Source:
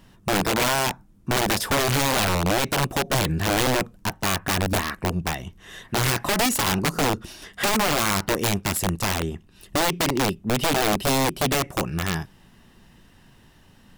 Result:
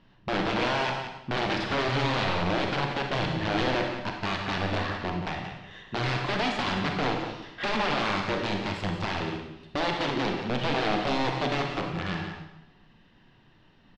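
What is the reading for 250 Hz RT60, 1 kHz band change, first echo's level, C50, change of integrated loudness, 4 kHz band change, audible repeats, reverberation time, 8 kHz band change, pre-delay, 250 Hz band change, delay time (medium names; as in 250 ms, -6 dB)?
0.85 s, -3.5 dB, -9.5 dB, 2.5 dB, -5.5 dB, -6.0 dB, 1, 0.90 s, -22.0 dB, 30 ms, -4.5 dB, 177 ms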